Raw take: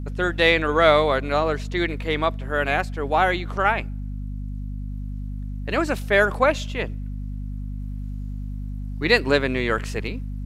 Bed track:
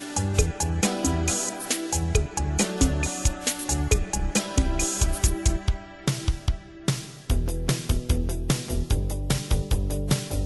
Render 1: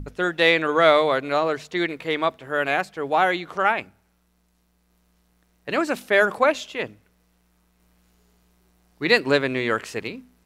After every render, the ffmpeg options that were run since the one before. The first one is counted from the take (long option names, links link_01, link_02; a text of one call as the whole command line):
ffmpeg -i in.wav -af "bandreject=frequency=50:width_type=h:width=6,bandreject=frequency=100:width_type=h:width=6,bandreject=frequency=150:width_type=h:width=6,bandreject=frequency=200:width_type=h:width=6,bandreject=frequency=250:width_type=h:width=6" out.wav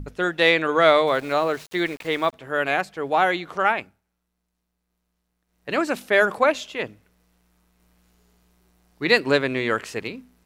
ffmpeg -i in.wav -filter_complex "[0:a]asettb=1/sr,asplit=3[link_01][link_02][link_03];[link_01]atrim=end=1.074[link_04];[link_02]atrim=start=1.07:end=2.33,asetpts=PTS-STARTPTS,afade=type=in:duration=0.004:curve=qsin,afade=type=out:start_time=1.256:duration=0.004:curve=qsin,aeval=exprs='val(0)*gte(abs(val(0)),0.0119)':channel_layout=same[link_05];[link_03]atrim=start=2.326[link_06];[link_04][link_05]acrossfade=duration=0.004:curve1=hsin:curve2=qsin[link_07];[link_07][link_06]acrossfade=duration=0.004:curve1=qsin:curve2=hsin,asplit=3[link_08][link_09][link_10];[link_08]atrim=end=4.01,asetpts=PTS-STARTPTS,afade=type=out:start_time=3.75:duration=0.26:silence=0.251189[link_11];[link_09]atrim=start=4.01:end=5.46,asetpts=PTS-STARTPTS,volume=-12dB[link_12];[link_10]atrim=start=5.46,asetpts=PTS-STARTPTS,afade=type=in:duration=0.26:silence=0.251189[link_13];[link_11][link_12][link_13]concat=n=3:v=0:a=1" out.wav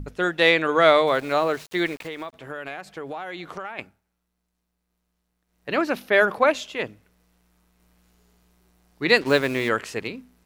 ffmpeg -i in.wav -filter_complex "[0:a]asettb=1/sr,asplit=3[link_01][link_02][link_03];[link_01]atrim=end=1.964[link_04];[link_02]atrim=start=1.96:end=3.79,asetpts=PTS-STARTPTS,afade=type=in:duration=0.004:curve=qsin,afade=type=out:start_time=1.826:duration=0.004:curve=qsin,acompressor=threshold=-29dB:ratio=12:attack=3.2:release=140:knee=1:detection=peak[link_05];[link_03]atrim=start=3.786[link_06];[link_04][link_05]acrossfade=duration=0.004:curve1=hsin:curve2=qsin[link_07];[link_07][link_06]acrossfade=duration=0.004:curve1=qsin:curve2=hsin,asettb=1/sr,asplit=3[link_08][link_09][link_10];[link_08]atrim=end=5.694[link_11];[link_09]atrim=start=5.69:end=6.47,asetpts=PTS-STARTPTS,afade=type=in:duration=0.004:curve=qsin,afade=type=out:start_time=0.776:duration=0.004:curve=qsin,equalizer=frequency=7900:width_type=o:width=0.52:gain=-12.5[link_12];[link_10]atrim=start=6.466[link_13];[link_11][link_12]acrossfade=duration=0.004:curve1=hsin:curve2=qsin[link_14];[link_14][link_13]acrossfade=duration=0.004:curve1=qsin:curve2=hsin,asplit=3[link_15][link_16][link_17];[link_15]afade=type=out:start_time=9.2:duration=0.02[link_18];[link_16]acrusher=bits=5:mix=0:aa=0.5,afade=type=in:start_time=9.2:duration=0.02,afade=type=out:start_time=9.68:duration=0.02[link_19];[link_17]afade=type=in:start_time=9.68:duration=0.02[link_20];[link_18][link_19][link_20]amix=inputs=3:normalize=0" out.wav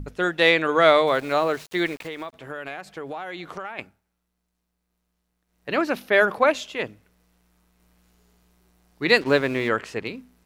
ffmpeg -i in.wav -filter_complex "[0:a]asettb=1/sr,asplit=3[link_01][link_02][link_03];[link_01]atrim=end=9.244[link_04];[link_02]atrim=start=9.24:end=10.07,asetpts=PTS-STARTPTS,afade=type=in:duration=0.004:curve=qsin,afade=type=out:start_time=0.826:duration=0.004:curve=qsin,aemphasis=mode=reproduction:type=cd[link_05];[link_03]atrim=start=10.066[link_06];[link_04][link_05]acrossfade=duration=0.004:curve1=hsin:curve2=qsin[link_07];[link_07][link_06]acrossfade=duration=0.004:curve1=qsin:curve2=hsin" out.wav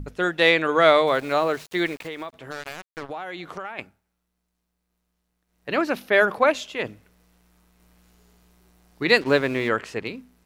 ffmpeg -i in.wav -filter_complex "[0:a]asplit=3[link_01][link_02][link_03];[link_01]afade=type=out:start_time=2.5:duration=0.02[link_04];[link_02]acrusher=bits=4:mix=0:aa=0.5,afade=type=in:start_time=2.5:duration=0.02,afade=type=out:start_time=3.09:duration=0.02[link_05];[link_03]afade=type=in:start_time=3.09:duration=0.02[link_06];[link_04][link_05][link_06]amix=inputs=3:normalize=0,asplit=3[link_07][link_08][link_09];[link_07]atrim=end=6.852[link_10];[link_08]atrim=start=6.848:end=9.032,asetpts=PTS-STARTPTS,volume=3.5dB[link_11];[link_09]atrim=start=9.028[link_12];[link_10][link_11]acrossfade=duration=0.004:curve1=hsin:curve2=hsin[link_13];[link_13][link_12]acrossfade=duration=0.004:curve1=hsin:curve2=hsin" out.wav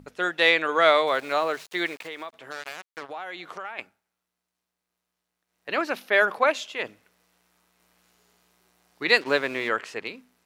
ffmpeg -i in.wav -af "highpass=frequency=650:poles=1,highshelf=frequency=10000:gain=-4" out.wav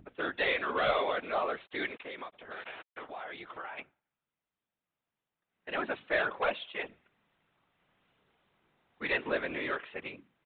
ffmpeg -i in.wav -af "aresample=8000,asoftclip=type=tanh:threshold=-17dB,aresample=44100,afftfilt=real='hypot(re,im)*cos(2*PI*random(0))':imag='hypot(re,im)*sin(2*PI*random(1))':win_size=512:overlap=0.75" out.wav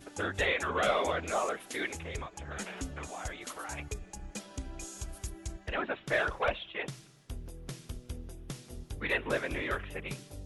ffmpeg -i in.wav -i bed.wav -filter_complex "[1:a]volume=-18dB[link_01];[0:a][link_01]amix=inputs=2:normalize=0" out.wav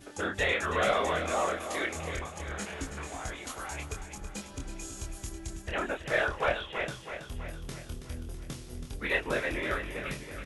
ffmpeg -i in.wav -filter_complex "[0:a]asplit=2[link_01][link_02];[link_02]adelay=25,volume=-4dB[link_03];[link_01][link_03]amix=inputs=2:normalize=0,aecho=1:1:326|652|978|1304|1630|1956|2282:0.335|0.191|0.109|0.062|0.0354|0.0202|0.0115" out.wav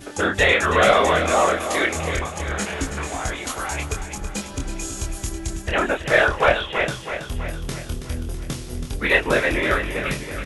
ffmpeg -i in.wav -af "volume=11.5dB" out.wav